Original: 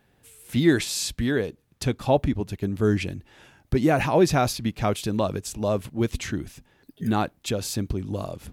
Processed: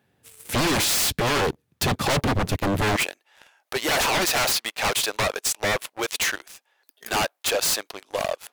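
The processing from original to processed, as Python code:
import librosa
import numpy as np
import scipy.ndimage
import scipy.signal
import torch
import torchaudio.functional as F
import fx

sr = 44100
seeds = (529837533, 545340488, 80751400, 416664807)

y = fx.highpass(x, sr, hz=fx.steps((0.0, 73.0), (2.96, 600.0)), slope=24)
y = fx.leveller(y, sr, passes=3)
y = 10.0 ** (-19.0 / 20.0) * (np.abs((y / 10.0 ** (-19.0 / 20.0) + 3.0) % 4.0 - 2.0) - 1.0)
y = y * librosa.db_to_amplitude(2.5)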